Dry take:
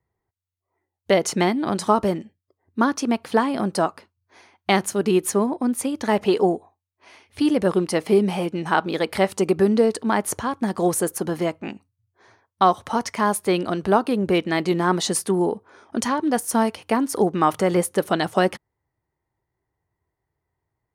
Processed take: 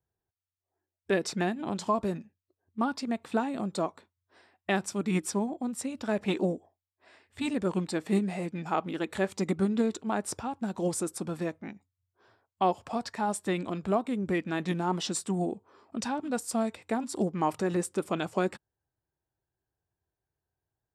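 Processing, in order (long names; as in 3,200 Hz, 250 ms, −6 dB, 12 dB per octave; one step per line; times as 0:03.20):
formants moved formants −3 semitones
level −9 dB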